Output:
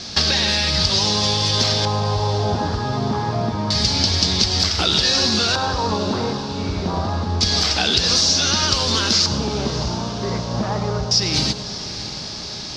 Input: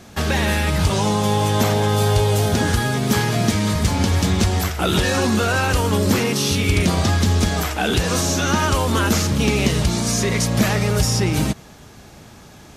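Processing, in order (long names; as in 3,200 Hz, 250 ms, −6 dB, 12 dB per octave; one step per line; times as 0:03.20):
parametric band 4,800 Hz +13.5 dB 1.1 octaves
downward compressor 6 to 1, threshold −23 dBFS, peak gain reduction 13 dB
auto-filter low-pass square 0.27 Hz 980–4,900 Hz
feedback delay with all-pass diffusion 647 ms, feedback 62%, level −13.5 dB
convolution reverb RT60 0.30 s, pre-delay 92 ms, DRR 12 dB
level +4 dB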